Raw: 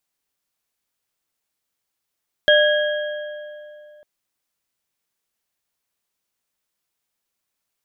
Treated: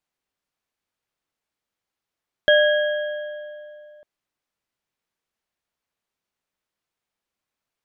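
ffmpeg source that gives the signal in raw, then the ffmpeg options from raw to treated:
-f lavfi -i "aevalsrc='0.251*pow(10,-3*t/2.79)*sin(2*PI*599*t)+0.2*pow(10,-3*t/2.058)*sin(2*PI*1651.4*t)+0.158*pow(10,-3*t/1.682)*sin(2*PI*3237*t)':duration=1.55:sample_rate=44100"
-af "lowpass=frequency=2700:poles=1"

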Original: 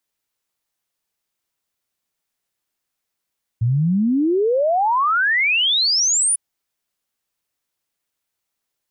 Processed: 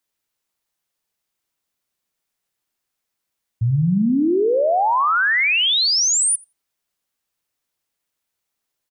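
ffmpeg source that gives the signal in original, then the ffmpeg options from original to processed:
-f lavfi -i "aevalsrc='0.188*clip(min(t,2.75-t)/0.01,0,1)*sin(2*PI*110*2.75/log(10000/110)*(exp(log(10000/110)*t/2.75)-1))':duration=2.75:sample_rate=44100"
-filter_complex "[0:a]asplit=2[link_01][link_02];[link_02]adelay=86,lowpass=frequency=1400:poles=1,volume=-10.5dB,asplit=2[link_03][link_04];[link_04]adelay=86,lowpass=frequency=1400:poles=1,volume=0.46,asplit=2[link_05][link_06];[link_06]adelay=86,lowpass=frequency=1400:poles=1,volume=0.46,asplit=2[link_07][link_08];[link_08]adelay=86,lowpass=frequency=1400:poles=1,volume=0.46,asplit=2[link_09][link_10];[link_10]adelay=86,lowpass=frequency=1400:poles=1,volume=0.46[link_11];[link_01][link_03][link_05][link_07][link_09][link_11]amix=inputs=6:normalize=0"

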